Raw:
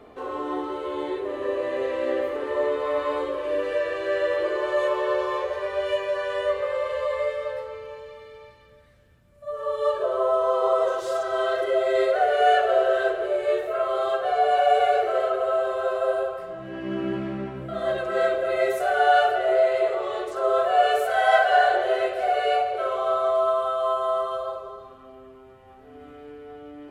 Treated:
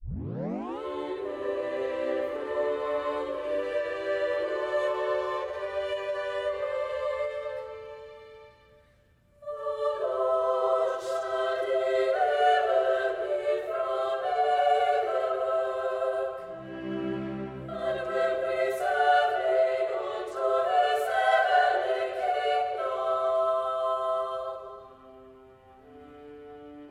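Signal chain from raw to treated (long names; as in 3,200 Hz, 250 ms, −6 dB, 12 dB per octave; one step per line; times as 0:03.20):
turntable start at the beginning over 0.81 s
every ending faded ahead of time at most 110 dB per second
level −4 dB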